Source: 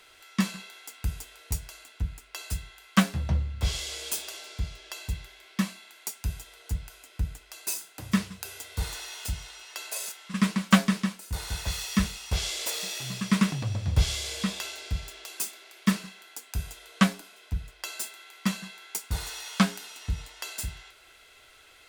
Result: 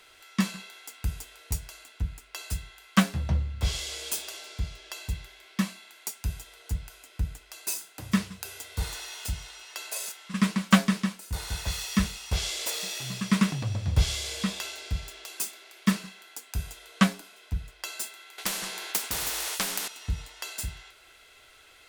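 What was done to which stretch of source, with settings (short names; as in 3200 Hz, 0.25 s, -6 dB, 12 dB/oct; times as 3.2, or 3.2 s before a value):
18.38–19.88 spectral compressor 4:1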